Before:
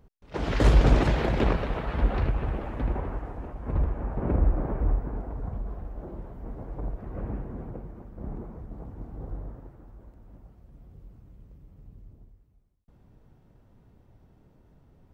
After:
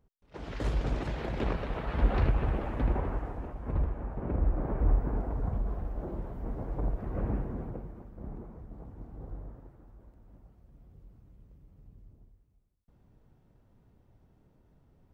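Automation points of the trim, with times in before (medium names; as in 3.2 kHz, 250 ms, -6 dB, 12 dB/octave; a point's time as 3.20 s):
0.98 s -12 dB
2.21 s 0 dB
3.22 s 0 dB
4.29 s -7 dB
5.10 s +2 dB
7.38 s +2 dB
8.31 s -5.5 dB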